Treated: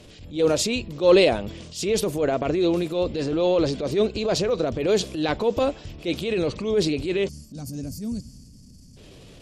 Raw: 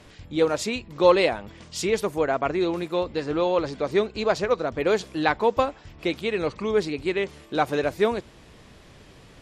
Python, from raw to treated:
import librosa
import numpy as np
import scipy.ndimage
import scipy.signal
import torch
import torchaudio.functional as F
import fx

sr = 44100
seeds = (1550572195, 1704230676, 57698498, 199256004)

y = fx.spec_box(x, sr, start_s=7.29, length_s=1.68, low_hz=280.0, high_hz=4300.0, gain_db=-23)
y = fx.transient(y, sr, attack_db=-9, sustain_db=5)
y = fx.band_shelf(y, sr, hz=1300.0, db=-8.5, octaves=1.7)
y = y * librosa.db_to_amplitude(4.0)